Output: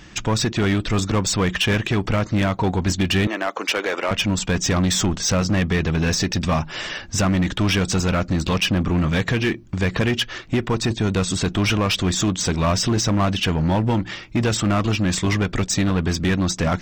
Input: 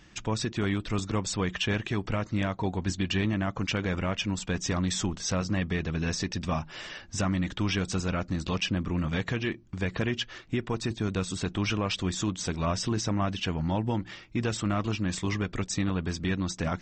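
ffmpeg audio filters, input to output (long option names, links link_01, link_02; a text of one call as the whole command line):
ffmpeg -i in.wav -filter_complex "[0:a]asettb=1/sr,asplit=3[link_01][link_02][link_03];[link_01]atrim=end=3.274[link_04];[link_02]atrim=start=3.27:end=4.11,asetpts=PTS-STARTPTS,afade=type=in:duration=0.004:curve=qsin,afade=type=out:start_time=0.836:duration=0.004:curve=qsin,highpass=frequency=370:width=0.5412,highpass=frequency=370:width=1.3066[link_05];[link_03]atrim=start=4.106[link_06];[link_04][link_05]acrossfade=duration=0.004:curve1=hsin:curve2=qsin[link_07];[link_07][link_06]acrossfade=duration=0.004:curve1=qsin:curve2=hsin,asplit=2[link_08][link_09];[link_09]aeval=exprs='0.0355*(abs(mod(val(0)/0.0355+3,4)-2)-1)':channel_layout=same,volume=-6dB[link_10];[link_08][link_10]amix=inputs=2:normalize=0,volume=8dB" out.wav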